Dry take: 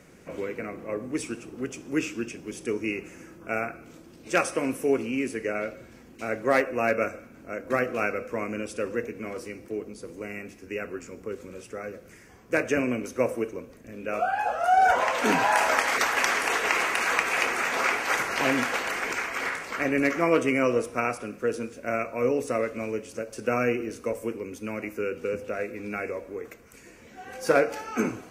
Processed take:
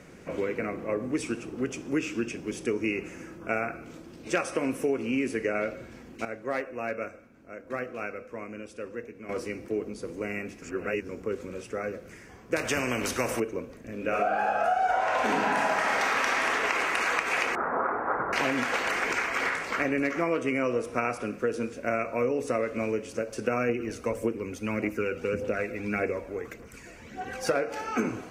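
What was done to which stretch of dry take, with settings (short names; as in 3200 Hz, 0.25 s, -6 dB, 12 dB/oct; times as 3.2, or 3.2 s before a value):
6.25–9.29 gain -11.5 dB
10.62–11.09 reverse
12.56–13.4 spectral compressor 2:1
13.95–16.44 reverb throw, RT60 2.3 s, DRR -2.5 dB
17.55–18.33 steep low-pass 1400 Hz
23.69–27.54 phaser 1.7 Hz, delay 1.6 ms, feedback 45%
whole clip: high shelf 8700 Hz -9.5 dB; compressor, threshold -27 dBFS; gain +3.5 dB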